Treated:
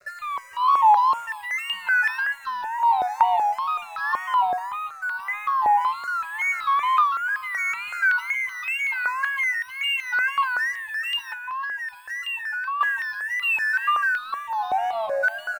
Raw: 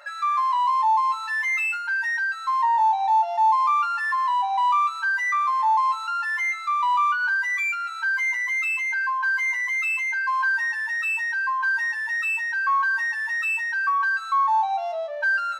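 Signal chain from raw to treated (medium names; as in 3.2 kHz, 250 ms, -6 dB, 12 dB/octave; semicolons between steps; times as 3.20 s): delay 443 ms -17.5 dB; reverberation RT60 5.2 s, pre-delay 33 ms, DRR 14.5 dB; rotary cabinet horn 0.85 Hz; peaking EQ 550 Hz +3.5 dB 0.28 oct; wow and flutter 110 cents; 4.34–5.81 s: distance through air 390 m; crossover distortion -49.5 dBFS; 11.32–12.81 s: compression 6:1, threshold -33 dBFS, peak gain reduction 13 dB; stepped phaser 5.3 Hz 880–2200 Hz; trim +6.5 dB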